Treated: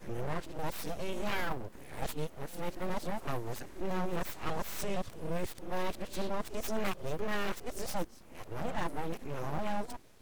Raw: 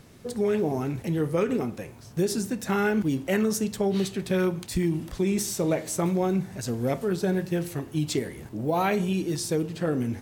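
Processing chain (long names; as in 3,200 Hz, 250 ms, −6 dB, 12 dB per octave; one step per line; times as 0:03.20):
played backwards from end to start
full-wave rectification
level −6.5 dB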